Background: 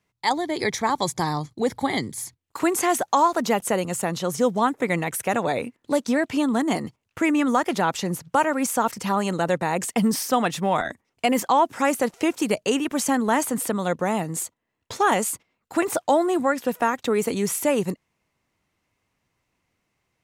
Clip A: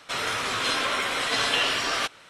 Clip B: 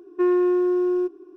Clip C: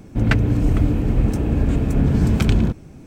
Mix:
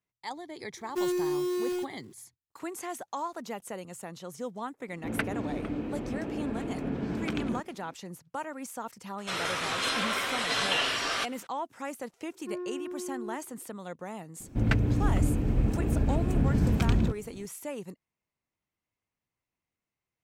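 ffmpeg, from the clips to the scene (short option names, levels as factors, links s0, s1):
-filter_complex "[2:a]asplit=2[s0][s1];[3:a]asplit=2[s2][s3];[0:a]volume=0.158[s4];[s0]acrusher=bits=3:mode=log:mix=0:aa=0.000001[s5];[s2]acrossover=split=200 4700:gain=0.1 1 0.2[s6][s7][s8];[s6][s7][s8]amix=inputs=3:normalize=0[s9];[s5]atrim=end=1.36,asetpts=PTS-STARTPTS,volume=0.335,afade=t=in:d=0.004:c=hsin,afade=t=out:st=1.356:d=0.004:c=hsin,adelay=770[s10];[s9]atrim=end=3.06,asetpts=PTS-STARTPTS,volume=0.376,afade=t=in:d=0.004:c=hsin,afade=t=out:st=3.056:d=0.004:c=hsin,adelay=4880[s11];[1:a]atrim=end=2.29,asetpts=PTS-STARTPTS,volume=0.631,afade=t=in:d=0.004:c=hsin,afade=t=out:st=2.286:d=0.004:c=hsin,adelay=9180[s12];[s1]atrim=end=1.36,asetpts=PTS-STARTPTS,volume=0.133,afade=t=in:d=0.004:c=hsin,afade=t=out:st=1.356:d=0.004:c=hsin,adelay=12280[s13];[s3]atrim=end=3.06,asetpts=PTS-STARTPTS,volume=0.398,afade=t=in:d=0.004:c=hsin,afade=t=out:st=3.056:d=0.004:c=hsin,adelay=14400[s14];[s4][s10][s11][s12][s13][s14]amix=inputs=6:normalize=0"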